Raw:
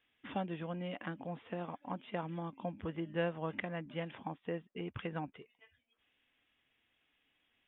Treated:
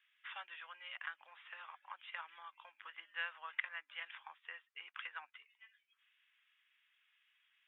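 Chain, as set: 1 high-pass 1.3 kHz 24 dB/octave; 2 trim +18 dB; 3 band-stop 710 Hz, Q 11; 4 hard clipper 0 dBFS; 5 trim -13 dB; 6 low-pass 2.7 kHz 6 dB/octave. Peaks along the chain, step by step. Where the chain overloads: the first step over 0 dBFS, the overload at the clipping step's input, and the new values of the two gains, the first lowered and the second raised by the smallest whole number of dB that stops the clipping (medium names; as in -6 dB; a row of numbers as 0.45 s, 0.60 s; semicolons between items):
-23.5 dBFS, -5.5 dBFS, -5.5 dBFS, -5.5 dBFS, -18.5 dBFS, -20.5 dBFS; nothing clips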